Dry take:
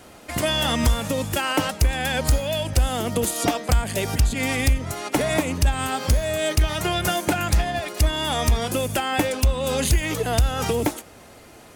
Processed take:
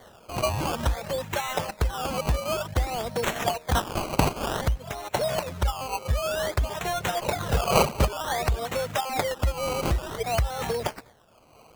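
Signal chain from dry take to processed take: 3.74–4.61 spectral limiter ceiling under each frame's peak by 24 dB; 7.21–8.04 wind noise 560 Hz -20 dBFS; reverb RT60 0.35 s, pre-delay 0.195 s, DRR 15.5 dB; reverb removal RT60 1.2 s; HPF 99 Hz 6 dB/oct; fixed phaser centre 710 Hz, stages 4; 5.66–6.26 LPF 3300 Hz 24 dB/oct; decimation with a swept rate 17×, swing 100% 0.54 Hz

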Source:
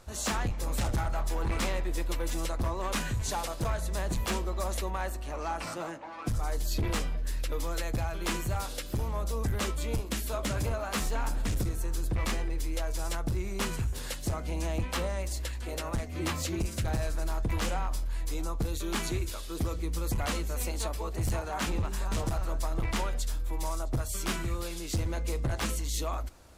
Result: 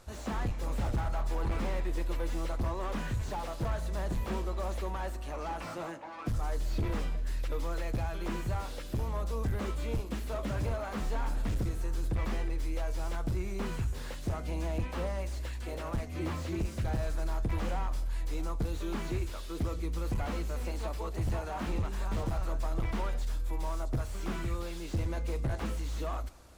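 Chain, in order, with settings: on a send at -23 dB: reverb RT60 1.1 s, pre-delay 59 ms; on the sum: slew limiter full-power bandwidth 21 Hz; gain -1.5 dB

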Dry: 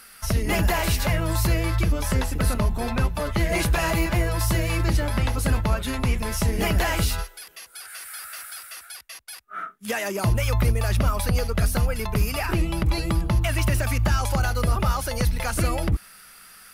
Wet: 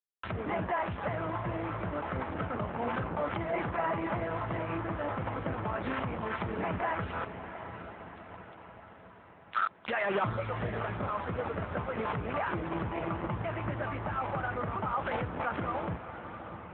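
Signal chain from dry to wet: Wiener smoothing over 9 samples; dynamic EQ 1200 Hz, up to +3 dB, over -38 dBFS, Q 0.92; soft clip -15 dBFS, distortion -20 dB; bit-crush 5-bit; treble ducked by the level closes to 1300 Hz, closed at -22 dBFS; limiter -23.5 dBFS, peak gain reduction 6.5 dB; low shelf 400 Hz -9.5 dB; diffused feedback echo 0.695 s, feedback 56%, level -10 dB; gain +4 dB; AMR-NB 7.95 kbps 8000 Hz

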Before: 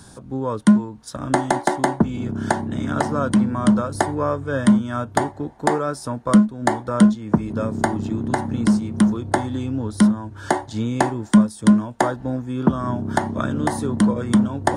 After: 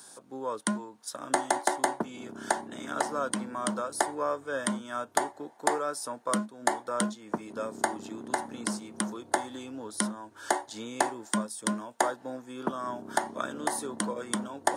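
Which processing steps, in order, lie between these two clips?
HPF 420 Hz 12 dB/oct; high shelf 6900 Hz +10.5 dB; gain -6.5 dB

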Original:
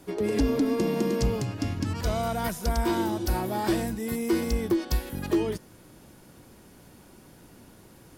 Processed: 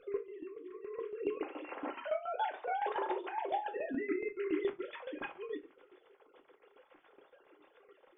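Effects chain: sine-wave speech; negative-ratio compressor -31 dBFS, ratio -0.5; 1.37–3.74 HPF 320 Hz 24 dB/oct; reverb RT60 0.35 s, pre-delay 4 ms, DRR 2.5 dB; tremolo saw down 7.1 Hz, depth 70%; gain -4.5 dB

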